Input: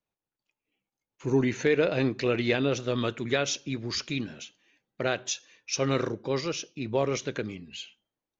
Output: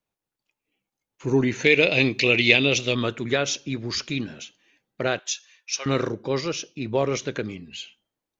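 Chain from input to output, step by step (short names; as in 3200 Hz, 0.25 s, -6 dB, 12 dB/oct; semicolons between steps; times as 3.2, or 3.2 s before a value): 1.64–2.95 resonant high shelf 1900 Hz +7.5 dB, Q 3; 5.19–5.86 Bessel high-pass 1500 Hz, order 2; gain +3.5 dB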